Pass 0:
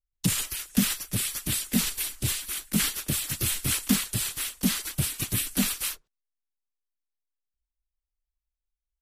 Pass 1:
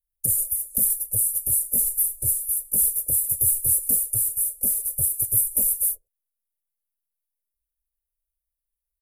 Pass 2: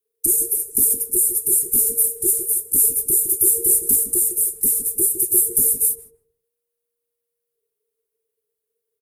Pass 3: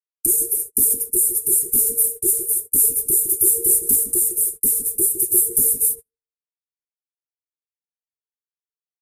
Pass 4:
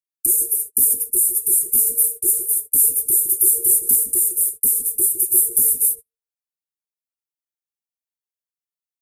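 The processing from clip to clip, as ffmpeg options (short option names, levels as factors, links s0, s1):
-af "firequalizer=gain_entry='entry(110,0);entry(180,-18);entry(530,5);entry(960,-22);entry(1500,-25);entry(3500,-30);entry(9800,13)':delay=0.05:min_phase=1,volume=0.794"
-filter_complex "[0:a]afreqshift=-470,aeval=exprs='0.562*(cos(1*acos(clip(val(0)/0.562,-1,1)))-cos(1*PI/2))+0.00316*(cos(2*acos(clip(val(0)/0.562,-1,1)))-cos(2*PI/2))+0.00891*(cos(5*acos(clip(val(0)/0.562,-1,1)))-cos(5*PI/2))':c=same,asplit=2[s0][s1];[s1]adelay=156,lowpass=f=1200:p=1,volume=0.398,asplit=2[s2][s3];[s3]adelay=156,lowpass=f=1200:p=1,volume=0.27,asplit=2[s4][s5];[s5]adelay=156,lowpass=f=1200:p=1,volume=0.27[s6];[s0][s2][s4][s6]amix=inputs=4:normalize=0,volume=1.58"
-af "agate=range=0.0126:threshold=0.0447:ratio=16:detection=peak"
-af "highshelf=f=6100:g=8.5,volume=0.501"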